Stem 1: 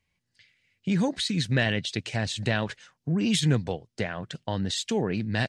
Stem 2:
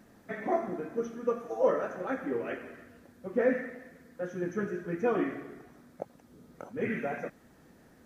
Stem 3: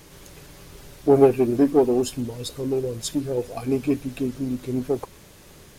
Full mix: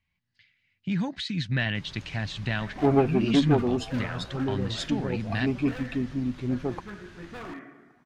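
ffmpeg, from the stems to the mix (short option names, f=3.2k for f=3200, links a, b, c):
-filter_complex "[0:a]lowpass=3.7k,volume=-1dB[a];[1:a]highpass=f=260:p=1,aemphasis=mode=reproduction:type=75fm,asoftclip=type=hard:threshold=-29.5dB,adelay=2300,volume=-1.5dB[b];[2:a]lowpass=3.6k,adelay=1750,volume=1dB[c];[a][b][c]amix=inputs=3:normalize=0,equalizer=f=460:w=1.4:g=-11"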